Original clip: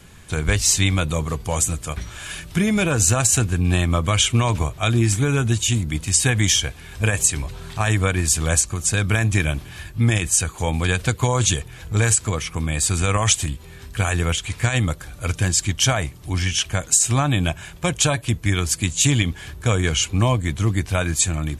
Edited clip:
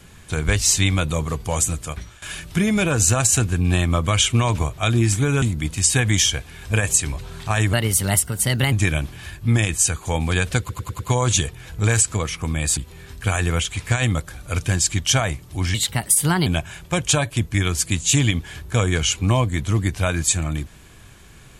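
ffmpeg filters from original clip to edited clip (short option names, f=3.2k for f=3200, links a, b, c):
-filter_complex "[0:a]asplit=12[a][b][c][d][e][f][g][h][i][j][k][l];[a]atrim=end=2.22,asetpts=PTS-STARTPTS,afade=t=out:st=1.68:d=0.54:c=qsin:silence=0.149624[m];[b]atrim=start=2.22:end=5.422,asetpts=PTS-STARTPTS,afade=t=in:d=0.004:c=hsin:silence=0.149624[n];[c]atrim=start=5.718:end=8.034[o];[d]atrim=start=8.03:end=9.25,asetpts=PTS-STARTPTS,asetrate=54243,aresample=44100,atrim=end_sample=43741,asetpts=PTS-STARTPTS[p];[e]atrim=start=9.246:end=11.222[q];[f]atrim=start=11.118:end=11.222[r];[g]atrim=start=11.118:end=11.222[s];[h]atrim=start=11.118:end=11.222[t];[i]atrim=start=11.118:end=12.902[u];[j]atrim=start=13.498:end=16.474[v];[k]atrim=start=16.47:end=17.38,asetpts=PTS-STARTPTS,asetrate=55566,aresample=44100[w];[l]atrim=start=17.376[x];[m][n]concat=n=2:v=0:a=1[y];[y][o]acrossfade=d=0.004:c1=hsin:c2=hsin[z];[z][p]acrossfade=d=0.004:c1=hsin:c2=hsin[aa];[aa][q]acrossfade=d=0.004:c1=hsin:c2=hsin[ab];[ab][r]acrossfade=d=0.004:c1=hsin:c2=hsin[ac];[ac][s]acrossfade=d=0.004:c1=hsin:c2=hsin[ad];[ad][t]acrossfade=d=0.004:c1=hsin:c2=hsin[ae];[ae][u]acrossfade=d=0.004:c1=hsin:c2=hsin[af];[af][v]acrossfade=d=0.004:c1=hsin:c2=hsin[ag];[ag][w]acrossfade=d=0.004:c1=hsin:c2=hsin[ah];[ah][x]acrossfade=d=0.004:c1=hsin:c2=hsin"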